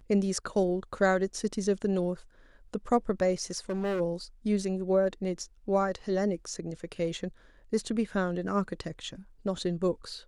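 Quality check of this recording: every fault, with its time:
0:03.50–0:04.01: clipping −27.5 dBFS

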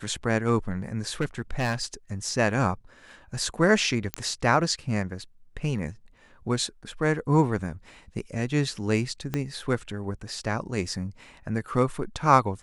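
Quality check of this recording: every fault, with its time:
0:01.20–0:01.82: clipping −21 dBFS
0:04.14: click −11 dBFS
0:09.34: click −14 dBFS

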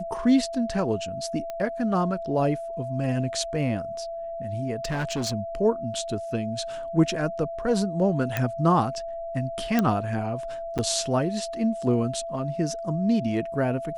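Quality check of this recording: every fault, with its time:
whistle 670 Hz −31 dBFS
0:01.50: click −20 dBFS
0:04.84–0:05.34: clipping −24 dBFS
0:08.37: click −11 dBFS
0:09.79: click −9 dBFS
0:10.78–0:10.79: drop-out 7.5 ms

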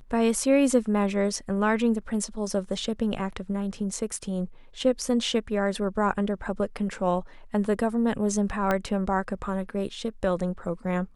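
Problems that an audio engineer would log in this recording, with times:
0:08.71: click −12 dBFS

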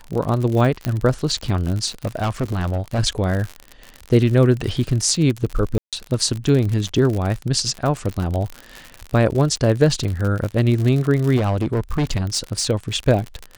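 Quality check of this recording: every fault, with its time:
surface crackle 66 per second −23 dBFS
0:00.85: click −8 dBFS
0:02.05–0:03.00: clipping −17.5 dBFS
0:05.78–0:05.93: drop-out 147 ms
0:11.36–0:12.66: clipping −16 dBFS

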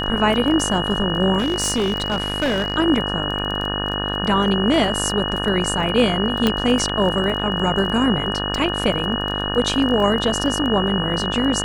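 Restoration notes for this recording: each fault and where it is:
mains buzz 50 Hz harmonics 36 −26 dBFS
surface crackle 19 per second −25 dBFS
whistle 2,900 Hz −25 dBFS
0:01.38–0:02.76: clipping −16 dBFS
0:06.47: click −4 dBFS

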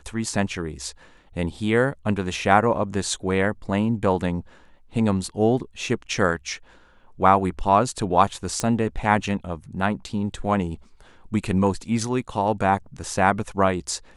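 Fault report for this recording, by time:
0:08.60: click −10 dBFS

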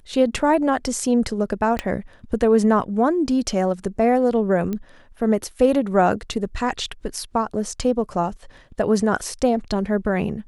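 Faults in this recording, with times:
0:01.79: click −10 dBFS
0:04.73: click −15 dBFS

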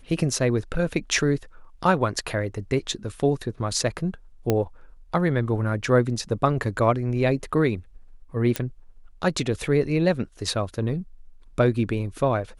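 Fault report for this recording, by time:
0:04.50: click −8 dBFS
0:08.56: click −8 dBFS

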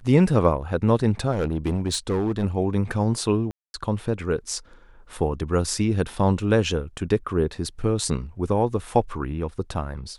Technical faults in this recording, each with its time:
0:01.31–0:02.45: clipping −19 dBFS
0:03.51–0:03.74: drop-out 231 ms

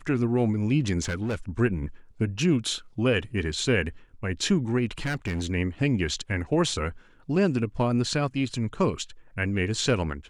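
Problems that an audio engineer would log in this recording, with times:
0:01.03–0:01.35: clipping −24.5 dBFS
0:04.91–0:05.46: clipping −24.5 dBFS

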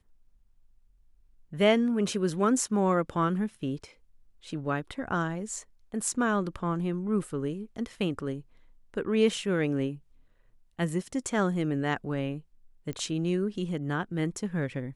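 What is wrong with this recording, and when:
0:12.93: click −23 dBFS

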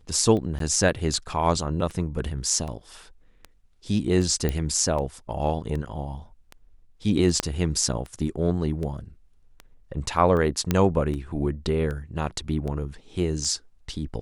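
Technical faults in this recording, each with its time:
scratch tick 78 rpm −22 dBFS
0:00.59–0:00.60: drop-out 13 ms
0:04.49: click −12 dBFS
0:07.40: click −7 dBFS
0:10.71: click −8 dBFS

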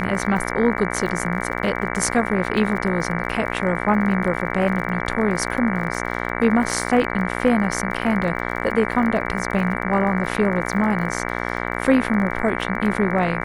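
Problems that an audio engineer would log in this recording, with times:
mains buzz 60 Hz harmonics 38 −26 dBFS
surface crackle 29 per second −29 dBFS

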